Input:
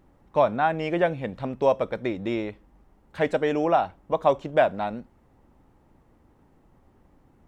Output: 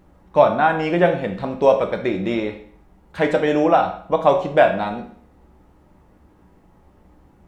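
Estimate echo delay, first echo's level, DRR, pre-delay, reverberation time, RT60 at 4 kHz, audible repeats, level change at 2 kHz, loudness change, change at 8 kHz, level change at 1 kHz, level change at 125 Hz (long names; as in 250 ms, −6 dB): no echo audible, no echo audible, 3.5 dB, 6 ms, 0.55 s, 0.50 s, no echo audible, +7.0 dB, +6.5 dB, can't be measured, +6.0 dB, +6.0 dB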